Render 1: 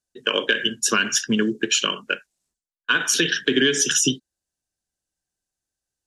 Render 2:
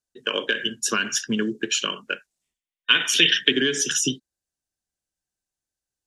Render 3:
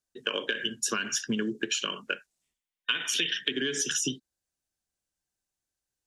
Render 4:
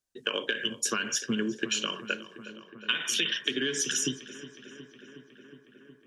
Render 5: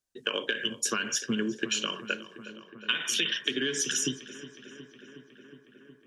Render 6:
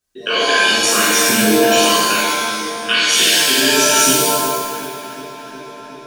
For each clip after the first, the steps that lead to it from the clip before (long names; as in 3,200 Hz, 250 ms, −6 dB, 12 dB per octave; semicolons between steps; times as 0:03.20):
gain on a spectral selection 0:02.42–0:03.51, 1,800–3,700 Hz +11 dB; level −3.5 dB
downward compressor 6 to 1, threshold −26 dBFS, peak gain reduction 14 dB
feedback echo with a low-pass in the loop 365 ms, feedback 80%, low-pass 3,400 Hz, level −15 dB
no processing that can be heard
reverb with rising layers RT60 1.3 s, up +7 semitones, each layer −2 dB, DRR −9 dB; level +5 dB